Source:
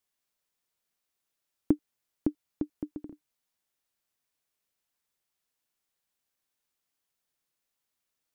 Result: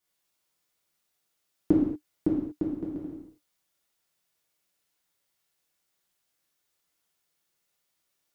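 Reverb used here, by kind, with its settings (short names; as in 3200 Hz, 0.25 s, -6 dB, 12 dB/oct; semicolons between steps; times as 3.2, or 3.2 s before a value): non-linear reverb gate 0.26 s falling, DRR -6.5 dB; gain -1.5 dB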